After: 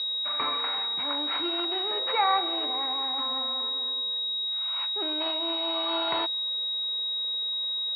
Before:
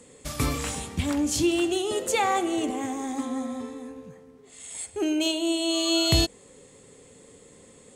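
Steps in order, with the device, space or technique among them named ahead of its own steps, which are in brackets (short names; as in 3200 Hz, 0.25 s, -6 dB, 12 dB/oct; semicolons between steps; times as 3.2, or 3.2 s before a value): toy sound module (decimation joined by straight lines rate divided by 4×; pulse-width modulation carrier 3800 Hz; speaker cabinet 670–4300 Hz, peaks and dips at 1000 Hz +8 dB, 1400 Hz +4 dB, 2200 Hz +6 dB, 4100 Hz +6 dB)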